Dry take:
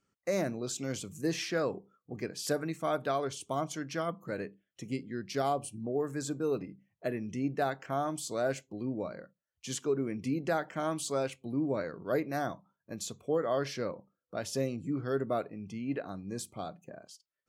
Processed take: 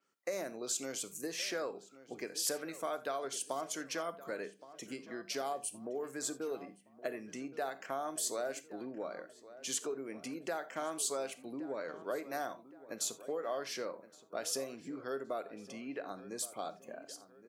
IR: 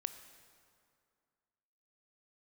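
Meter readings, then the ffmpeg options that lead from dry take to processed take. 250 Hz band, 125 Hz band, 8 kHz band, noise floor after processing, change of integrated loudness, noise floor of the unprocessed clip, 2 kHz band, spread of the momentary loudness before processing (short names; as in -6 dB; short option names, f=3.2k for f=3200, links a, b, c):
-9.5 dB, -19.5 dB, +3.5 dB, -61 dBFS, -5.0 dB, under -85 dBFS, -3.5 dB, 10 LU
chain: -filter_complex "[0:a]acompressor=threshold=-35dB:ratio=6,highpass=380,asplit=2[a][b];[b]adelay=1119,lowpass=f=2.6k:p=1,volume=-16dB,asplit=2[c][d];[d]adelay=1119,lowpass=f=2.6k:p=1,volume=0.44,asplit=2[e][f];[f]adelay=1119,lowpass=f=2.6k:p=1,volume=0.44,asplit=2[g][h];[h]adelay=1119,lowpass=f=2.6k:p=1,volume=0.44[i];[a][c][e][g][i]amix=inputs=5:normalize=0[j];[1:a]atrim=start_sample=2205,atrim=end_sample=3969[k];[j][k]afir=irnorm=-1:irlink=0,adynamicequalizer=threshold=0.00112:dfrequency=6500:dqfactor=0.7:tfrequency=6500:tqfactor=0.7:attack=5:release=100:ratio=0.375:range=3.5:mode=boostabove:tftype=highshelf,volume=3.5dB"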